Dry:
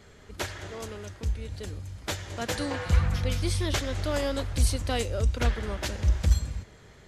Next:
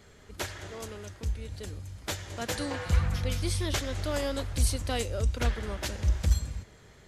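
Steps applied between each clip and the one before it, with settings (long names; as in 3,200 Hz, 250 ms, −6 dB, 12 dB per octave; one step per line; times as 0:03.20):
high-shelf EQ 7,700 Hz +5 dB
level −2.5 dB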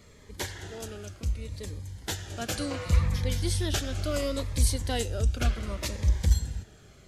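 phaser whose notches keep moving one way falling 0.69 Hz
level +2 dB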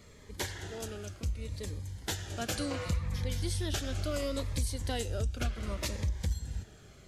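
downward compressor 5 to 1, threshold −28 dBFS, peak gain reduction 12 dB
level −1 dB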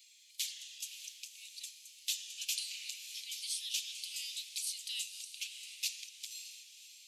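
Chebyshev high-pass filter 2,500 Hz, order 5
feedback delay with all-pass diffusion 572 ms, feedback 42%, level −11 dB
level +3 dB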